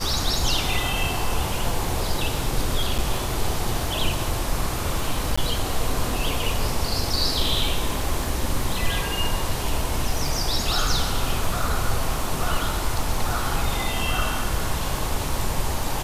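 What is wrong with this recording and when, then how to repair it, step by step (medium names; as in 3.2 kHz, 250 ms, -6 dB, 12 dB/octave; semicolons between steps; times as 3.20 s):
crackle 33 per s -30 dBFS
2.98–2.99 s: dropout 6.9 ms
5.36–5.38 s: dropout 15 ms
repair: de-click; interpolate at 2.98 s, 6.9 ms; interpolate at 5.36 s, 15 ms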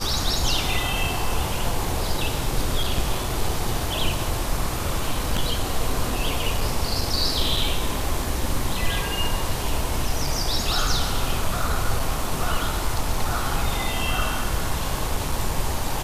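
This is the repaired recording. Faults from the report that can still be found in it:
nothing left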